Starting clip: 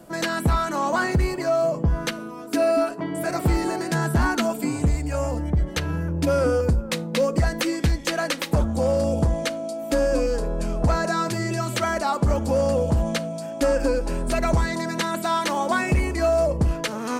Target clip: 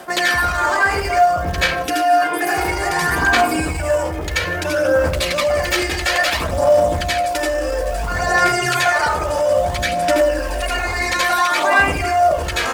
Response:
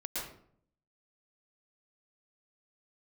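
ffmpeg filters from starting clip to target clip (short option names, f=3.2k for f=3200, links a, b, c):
-filter_complex "[0:a]equalizer=f=180:t=o:w=2:g=-14,asplit=2[a][b];[b]adelay=200,lowpass=f=1.8k:p=1,volume=-16dB,asplit=2[c][d];[d]adelay=200,lowpass=f=1.8k:p=1,volume=0.48,asplit=2[e][f];[f]adelay=200,lowpass=f=1.8k:p=1,volume=0.48,asplit=2[g][h];[h]adelay=200,lowpass=f=1.8k:p=1,volume=0.48[i];[a][c][e][g][i]amix=inputs=5:normalize=0[j];[1:a]atrim=start_sample=2205[k];[j][k]afir=irnorm=-1:irlink=0,asplit=2[l][m];[m]acompressor=threshold=-29dB:ratio=12,volume=-2dB[n];[l][n]amix=inputs=2:normalize=0,alimiter=limit=-14.5dB:level=0:latency=1:release=41,aphaser=in_gain=1:out_gain=1:delay=2.6:decay=0.4:speed=0.44:type=sinusoidal,acrusher=bits=8:mode=log:mix=0:aa=0.000001,areverse,acompressor=mode=upward:threshold=-21dB:ratio=2.5,areverse,asetrate=35002,aresample=44100,atempo=1.25992,highpass=f=130:p=1,equalizer=f=1.6k:t=o:w=1.9:g=4,asetrate=59535,aresample=44100,volume=4.5dB"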